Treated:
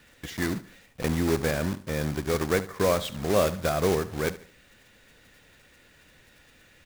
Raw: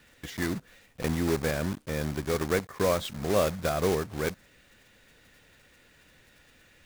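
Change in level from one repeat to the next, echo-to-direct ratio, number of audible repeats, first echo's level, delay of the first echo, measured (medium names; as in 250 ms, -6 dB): -8.5 dB, -16.0 dB, 3, -16.5 dB, 73 ms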